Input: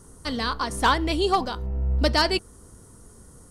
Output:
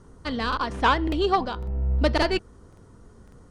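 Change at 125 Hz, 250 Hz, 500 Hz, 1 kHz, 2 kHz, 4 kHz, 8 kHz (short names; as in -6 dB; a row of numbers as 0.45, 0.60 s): 0.0, +0.5, +0.5, 0.0, -1.0, -4.5, -10.5 dB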